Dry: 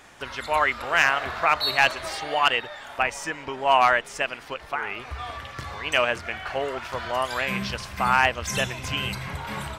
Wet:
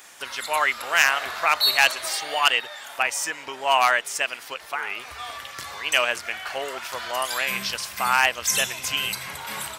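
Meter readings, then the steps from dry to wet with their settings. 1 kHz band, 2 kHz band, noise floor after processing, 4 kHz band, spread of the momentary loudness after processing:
−1.0 dB, +1.5 dB, −41 dBFS, +4.5 dB, 13 LU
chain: RIAA equalisation recording
level −1 dB

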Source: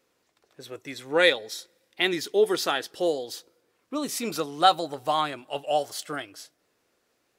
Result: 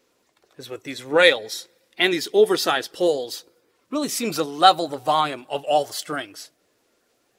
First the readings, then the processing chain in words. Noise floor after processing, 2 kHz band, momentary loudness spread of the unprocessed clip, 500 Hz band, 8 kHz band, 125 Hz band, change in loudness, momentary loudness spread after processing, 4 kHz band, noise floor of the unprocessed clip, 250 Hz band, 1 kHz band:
−68 dBFS, +5.0 dB, 17 LU, +5.0 dB, +4.5 dB, +4.5 dB, +5.0 dB, 17 LU, +5.0 dB, −73 dBFS, +5.0 dB, +5.0 dB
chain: spectral magnitudes quantised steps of 15 dB
level +5.5 dB

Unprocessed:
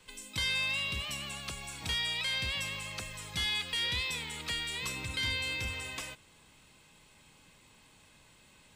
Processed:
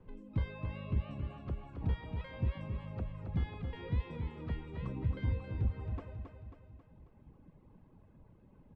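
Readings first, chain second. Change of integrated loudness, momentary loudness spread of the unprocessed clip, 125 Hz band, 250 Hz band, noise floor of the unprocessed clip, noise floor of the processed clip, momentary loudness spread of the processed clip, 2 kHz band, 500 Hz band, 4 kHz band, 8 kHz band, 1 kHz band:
−6.0 dB, 9 LU, +8.5 dB, +5.5 dB, −61 dBFS, −63 dBFS, 11 LU, −19.0 dB, +1.0 dB, −27.5 dB, below −40 dB, −6.0 dB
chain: reverb reduction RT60 2 s
low-pass filter 1,100 Hz 12 dB per octave
tilt shelving filter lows +9 dB, about 670 Hz
repeating echo 271 ms, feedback 52%, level −6.5 dB
level +1 dB

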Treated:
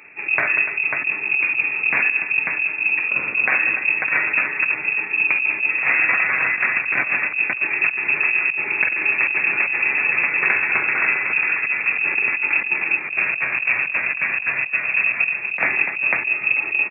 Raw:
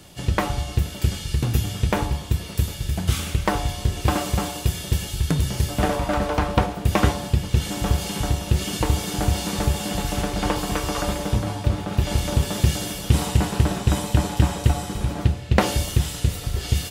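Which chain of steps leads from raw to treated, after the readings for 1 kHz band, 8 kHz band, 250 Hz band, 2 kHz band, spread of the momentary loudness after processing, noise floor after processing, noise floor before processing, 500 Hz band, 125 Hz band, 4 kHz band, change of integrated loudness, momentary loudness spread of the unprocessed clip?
−2.5 dB, below −40 dB, −14.5 dB, +18.5 dB, 3 LU, −28 dBFS, −34 dBFS, −8.5 dB, below −25 dB, below −15 dB, +6.0 dB, 5 LU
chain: parametric band 170 Hz −4 dB 0.96 octaves
on a send: multi-tap delay 45/46/67/190/292/544 ms −9.5/−19/−12.5/−11.5/−15/−7 dB
on the sum: voice inversion scrambler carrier 2,600 Hz
compressor whose output falls as the input rises −20 dBFS, ratio −0.5
high-pass filter 120 Hz 24 dB per octave
level +2 dB

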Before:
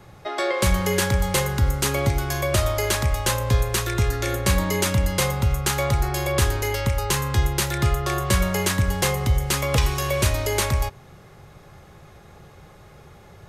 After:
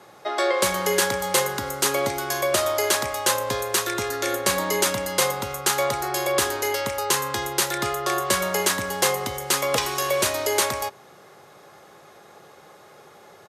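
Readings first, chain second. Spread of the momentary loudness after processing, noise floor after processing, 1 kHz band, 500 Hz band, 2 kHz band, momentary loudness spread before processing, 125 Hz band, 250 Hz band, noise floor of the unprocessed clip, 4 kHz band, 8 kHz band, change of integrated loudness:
4 LU, −50 dBFS, +2.5 dB, +2.0 dB, +1.0 dB, 2 LU, −16.0 dB, −4.5 dB, −48 dBFS, +2.0 dB, +3.0 dB, −0.5 dB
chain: parametric band 2,400 Hz −3.5 dB 0.77 octaves
downsampling to 32,000 Hz
high-pass filter 350 Hz 12 dB per octave
level +3 dB

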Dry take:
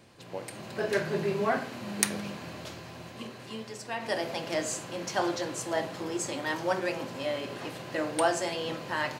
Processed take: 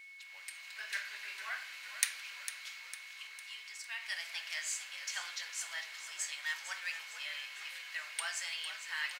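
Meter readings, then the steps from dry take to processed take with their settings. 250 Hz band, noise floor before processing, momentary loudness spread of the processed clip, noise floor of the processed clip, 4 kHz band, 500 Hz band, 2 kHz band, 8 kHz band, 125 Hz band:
below −40 dB, −46 dBFS, 9 LU, −51 dBFS, −2.0 dB, −32.5 dB, −3.0 dB, −3.5 dB, below −40 dB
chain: in parallel at −4 dB: soft clipping −19 dBFS, distortion −16 dB
on the sum: bit-depth reduction 12 bits, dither none
four-pole ladder high-pass 1,500 Hz, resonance 25%
steady tone 2,200 Hz −49 dBFS
floating-point word with a short mantissa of 4 bits
on a send: echo with shifted repeats 453 ms, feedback 50%, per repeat −61 Hz, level −11 dB
on the sum: level −1.5 dB

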